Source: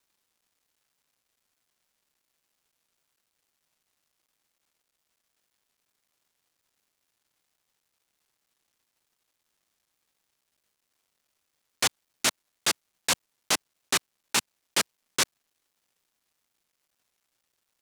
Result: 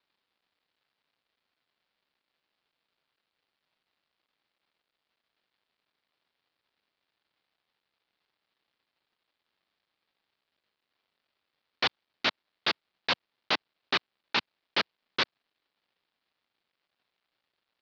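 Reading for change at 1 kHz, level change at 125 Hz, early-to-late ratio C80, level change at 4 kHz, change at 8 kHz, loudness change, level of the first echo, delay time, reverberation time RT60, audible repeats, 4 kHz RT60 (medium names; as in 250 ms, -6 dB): 0.0 dB, -3.5 dB, no reverb, -1.5 dB, -25.0 dB, -3.0 dB, no echo, no echo, no reverb, no echo, no reverb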